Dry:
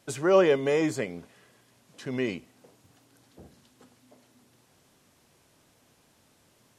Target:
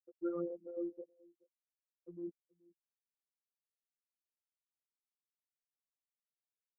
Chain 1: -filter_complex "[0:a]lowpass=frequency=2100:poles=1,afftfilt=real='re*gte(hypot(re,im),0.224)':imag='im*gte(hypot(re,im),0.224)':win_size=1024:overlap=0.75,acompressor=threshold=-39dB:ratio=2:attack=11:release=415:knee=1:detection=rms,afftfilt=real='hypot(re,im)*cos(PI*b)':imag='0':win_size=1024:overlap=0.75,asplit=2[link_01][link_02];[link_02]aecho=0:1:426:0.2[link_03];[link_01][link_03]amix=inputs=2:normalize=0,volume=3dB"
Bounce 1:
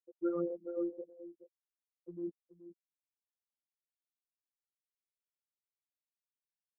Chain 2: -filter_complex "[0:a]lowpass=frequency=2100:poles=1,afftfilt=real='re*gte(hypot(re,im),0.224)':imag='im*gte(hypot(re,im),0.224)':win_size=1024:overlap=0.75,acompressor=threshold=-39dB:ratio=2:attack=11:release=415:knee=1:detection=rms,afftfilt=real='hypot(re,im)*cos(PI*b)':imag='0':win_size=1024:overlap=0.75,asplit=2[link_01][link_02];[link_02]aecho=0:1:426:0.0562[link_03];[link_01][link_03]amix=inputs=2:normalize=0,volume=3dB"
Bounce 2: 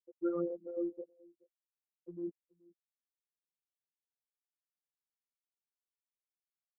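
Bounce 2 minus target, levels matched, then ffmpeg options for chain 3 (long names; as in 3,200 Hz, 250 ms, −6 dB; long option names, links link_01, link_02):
downward compressor: peak gain reduction −4 dB
-filter_complex "[0:a]lowpass=frequency=2100:poles=1,afftfilt=real='re*gte(hypot(re,im),0.224)':imag='im*gte(hypot(re,im),0.224)':win_size=1024:overlap=0.75,acompressor=threshold=-46.5dB:ratio=2:attack=11:release=415:knee=1:detection=rms,afftfilt=real='hypot(re,im)*cos(PI*b)':imag='0':win_size=1024:overlap=0.75,asplit=2[link_01][link_02];[link_02]aecho=0:1:426:0.0562[link_03];[link_01][link_03]amix=inputs=2:normalize=0,volume=3dB"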